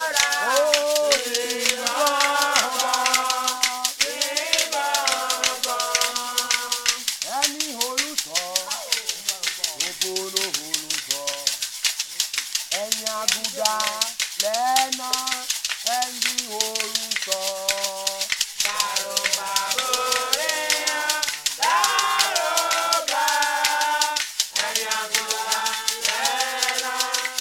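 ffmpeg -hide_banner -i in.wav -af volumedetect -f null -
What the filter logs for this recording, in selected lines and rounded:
mean_volume: -23.6 dB
max_volume: -1.1 dB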